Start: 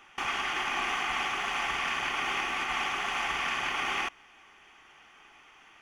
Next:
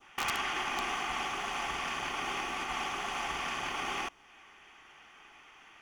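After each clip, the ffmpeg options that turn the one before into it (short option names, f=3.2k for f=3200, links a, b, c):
-af "adynamicequalizer=threshold=0.00501:dfrequency=2000:dqfactor=0.75:tfrequency=2000:tqfactor=0.75:attack=5:release=100:ratio=0.375:range=3.5:mode=cutabove:tftype=bell,aeval=exprs='(mod(13.3*val(0)+1,2)-1)/13.3':c=same"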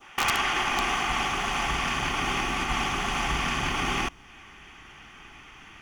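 -af "asubboost=boost=5:cutoff=240,volume=8dB"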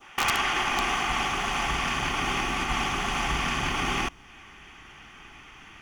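-af anull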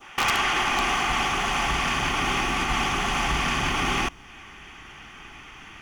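-af "asoftclip=type=tanh:threshold=-19.5dB,volume=4dB"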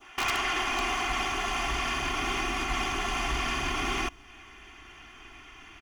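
-af "aecho=1:1:2.9:0.58,volume=-6.5dB"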